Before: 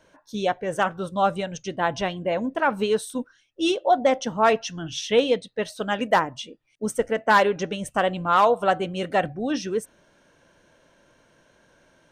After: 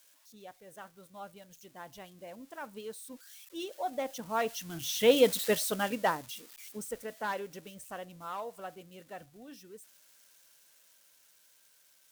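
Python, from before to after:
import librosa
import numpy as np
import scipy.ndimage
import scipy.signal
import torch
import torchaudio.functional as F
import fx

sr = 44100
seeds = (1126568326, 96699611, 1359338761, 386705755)

y = x + 0.5 * 10.0 ** (-25.0 / 20.0) * np.diff(np.sign(x), prepend=np.sign(x[:1]))
y = fx.doppler_pass(y, sr, speed_mps=6, closest_m=1.5, pass_at_s=5.37)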